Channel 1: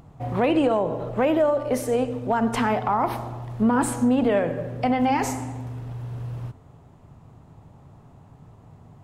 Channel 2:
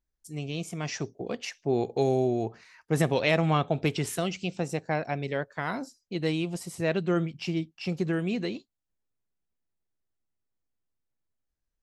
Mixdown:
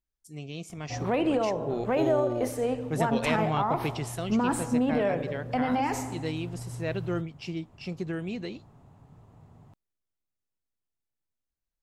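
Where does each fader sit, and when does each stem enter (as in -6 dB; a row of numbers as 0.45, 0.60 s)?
-5.5, -5.0 dB; 0.70, 0.00 s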